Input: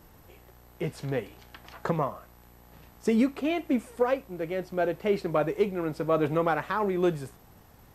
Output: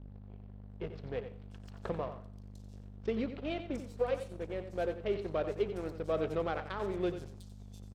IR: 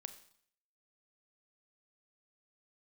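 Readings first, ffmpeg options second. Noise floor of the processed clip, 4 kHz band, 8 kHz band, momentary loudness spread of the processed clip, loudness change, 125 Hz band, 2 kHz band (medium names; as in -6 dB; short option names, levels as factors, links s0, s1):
-50 dBFS, -6.0 dB, no reading, 17 LU, -8.5 dB, -7.0 dB, -10.0 dB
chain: -filter_complex "[0:a]equalizer=f=125:t=o:w=1:g=-9,equalizer=f=250:t=o:w=1:g=-10,equalizer=f=1000:t=o:w=1:g=-10,equalizer=f=2000:t=o:w=1:g=-7,equalizer=f=4000:t=o:w=1:g=5,equalizer=f=8000:t=o:w=1:g=7,aeval=exprs='val(0)+0.00891*(sin(2*PI*50*n/s)+sin(2*PI*2*50*n/s)/2+sin(2*PI*3*50*n/s)/3+sin(2*PI*4*50*n/s)/4+sin(2*PI*5*50*n/s)/5)':c=same,asplit=2[s0][s1];[s1]aeval=exprs='val(0)*gte(abs(val(0)),0.015)':c=same,volume=0.668[s2];[s0][s2]amix=inputs=2:normalize=0,adynamicsmooth=sensitivity=4:basefreq=1300,acrossover=split=5000[s3][s4];[s4]adelay=700[s5];[s3][s5]amix=inputs=2:normalize=0,asplit=2[s6][s7];[1:a]atrim=start_sample=2205,asetrate=48510,aresample=44100,adelay=90[s8];[s7][s8]afir=irnorm=-1:irlink=0,volume=0.596[s9];[s6][s9]amix=inputs=2:normalize=0,volume=0.473"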